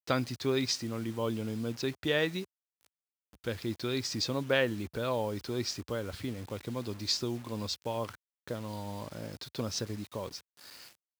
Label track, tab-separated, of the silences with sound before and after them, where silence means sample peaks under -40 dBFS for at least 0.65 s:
2.440000	3.440000	silence